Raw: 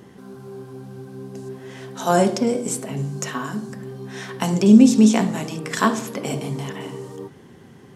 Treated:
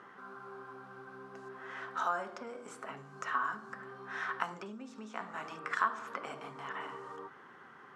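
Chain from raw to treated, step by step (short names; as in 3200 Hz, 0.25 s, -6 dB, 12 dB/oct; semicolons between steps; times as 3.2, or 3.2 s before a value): compressor 4:1, threshold -31 dBFS, peak gain reduction 20.5 dB; band-pass 1300 Hz, Q 4.1; gain +9 dB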